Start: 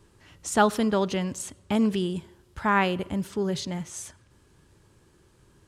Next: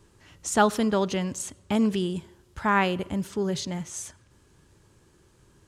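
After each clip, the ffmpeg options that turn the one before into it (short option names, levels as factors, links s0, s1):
-af "equalizer=f=6600:t=o:w=0.5:g=3"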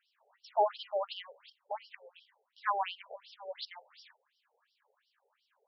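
-af "afftfilt=real='re*between(b*sr/1024,580*pow(4100/580,0.5+0.5*sin(2*PI*2.8*pts/sr))/1.41,580*pow(4100/580,0.5+0.5*sin(2*PI*2.8*pts/sr))*1.41)':imag='im*between(b*sr/1024,580*pow(4100/580,0.5+0.5*sin(2*PI*2.8*pts/sr))/1.41,580*pow(4100/580,0.5+0.5*sin(2*PI*2.8*pts/sr))*1.41)':win_size=1024:overlap=0.75,volume=0.668"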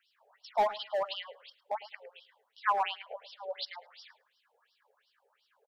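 -filter_complex "[0:a]acrossover=split=860|1100|2100[s0][s1][s2][s3];[s0]asoftclip=type=hard:threshold=0.02[s4];[s4][s1][s2][s3]amix=inputs=4:normalize=0,asplit=2[s5][s6];[s6]adelay=107,lowpass=f=3900:p=1,volume=0.141,asplit=2[s7][s8];[s8]adelay=107,lowpass=f=3900:p=1,volume=0.15[s9];[s5][s7][s9]amix=inputs=3:normalize=0,volume=1.58"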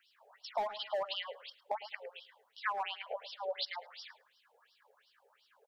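-af "acompressor=threshold=0.0158:ratio=8,volume=1.5"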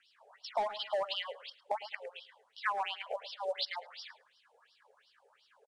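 -af "acrusher=bits=8:mode=log:mix=0:aa=0.000001,aresample=22050,aresample=44100,volume=1.26"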